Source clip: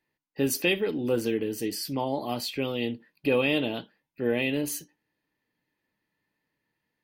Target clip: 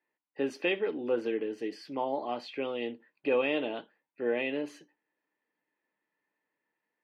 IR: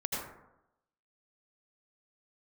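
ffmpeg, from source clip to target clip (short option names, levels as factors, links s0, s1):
-af "highpass=360,lowpass=2200,volume=0.891"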